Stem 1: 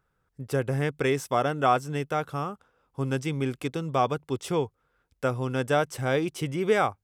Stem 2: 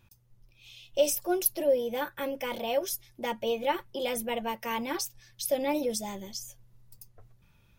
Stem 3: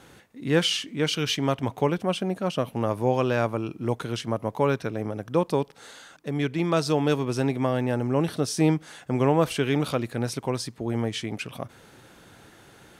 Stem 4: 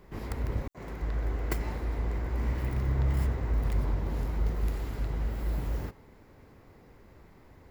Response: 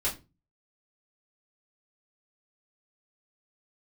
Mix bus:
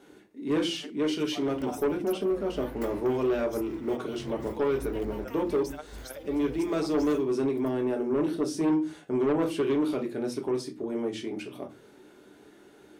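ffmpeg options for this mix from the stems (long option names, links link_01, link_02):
-filter_complex "[0:a]tremolo=f=19:d=0.7,highpass=270,asplit=2[link_01][link_02];[link_02]adelay=6.2,afreqshift=-2.4[link_03];[link_01][link_03]amix=inputs=2:normalize=1,volume=-13dB,asplit=2[link_04][link_05];[1:a]acompressor=threshold=-35dB:ratio=3,adelay=650,volume=-8dB[link_06];[2:a]equalizer=frequency=330:width_type=o:width=1.1:gain=14.5,volume=-13.5dB,asplit=2[link_07][link_08];[link_08]volume=-4.5dB[link_09];[3:a]flanger=delay=18:depth=6:speed=0.57,adelay=1300,volume=-3.5dB[link_10];[link_05]apad=whole_len=397027[link_11];[link_10][link_11]sidechaincompress=threshold=-53dB:ratio=8:attack=16:release=135[link_12];[4:a]atrim=start_sample=2205[link_13];[link_09][link_13]afir=irnorm=-1:irlink=0[link_14];[link_04][link_06][link_07][link_12][link_14]amix=inputs=5:normalize=0,lowshelf=frequency=91:gain=-12,asoftclip=type=tanh:threshold=-20dB"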